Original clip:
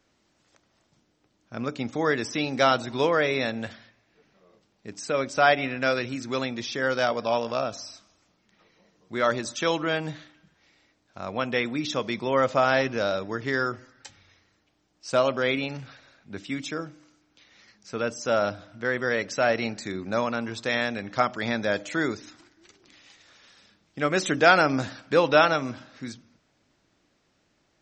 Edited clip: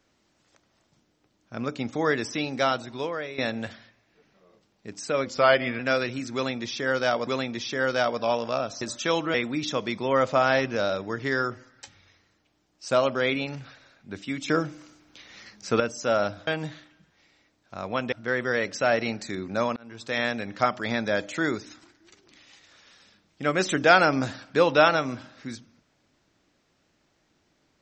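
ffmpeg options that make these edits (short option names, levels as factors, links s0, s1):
-filter_complex "[0:a]asplit=12[s0][s1][s2][s3][s4][s5][s6][s7][s8][s9][s10][s11];[s0]atrim=end=3.38,asetpts=PTS-STARTPTS,afade=t=out:st=2.17:d=1.21:silence=0.199526[s12];[s1]atrim=start=3.38:end=5.264,asetpts=PTS-STARTPTS,afade=t=in:d=0.004:c=hsin:silence=0.199526[s13];[s2]atrim=start=5.26:end=5.75,asetpts=PTS-STARTPTS,asetrate=40572,aresample=44100,atrim=end_sample=23488,asetpts=PTS-STARTPTS[s14];[s3]atrim=start=5.746:end=7.232[s15];[s4]atrim=start=6.298:end=7.842[s16];[s5]atrim=start=9.378:end=9.912[s17];[s6]atrim=start=11.558:end=16.702[s18];[s7]atrim=start=16.698:end=18.022,asetpts=PTS-STARTPTS,volume=2.66[s19];[s8]atrim=start=18.018:end=18.692[s20];[s9]atrim=start=9.908:end=11.562[s21];[s10]atrim=start=18.688:end=20.33,asetpts=PTS-STARTPTS,afade=t=out:st=1.638:d=0.004:c=hsin[s22];[s11]atrim=start=20.33,asetpts=PTS-STARTPTS,afade=t=in:d=0.47[s23];[s12][s13]concat=n=2:v=0:a=1[s24];[s24][s14]acrossfade=d=0.004:c1=hsin:c2=hsin[s25];[s25][s15]acrossfade=d=0.004:c1=hsin:c2=hsin[s26];[s26][s16]acrossfade=d=0.004:c1=hsin:c2=hsin[s27];[s27][s17]acrossfade=d=0.004:c1=hsin:c2=hsin[s28];[s28][s18]acrossfade=d=0.004:c1=hsin:c2=hsin[s29];[s29][s19]acrossfade=d=0.004:c1=hsin:c2=hsin[s30];[s30][s20]acrossfade=d=0.004:c1=hsin:c2=hsin[s31];[s31][s21]acrossfade=d=0.004:c1=hsin:c2=hsin[s32];[s22][s23]concat=n=2:v=0:a=1[s33];[s32][s33]acrossfade=d=0.004:c1=hsin:c2=hsin"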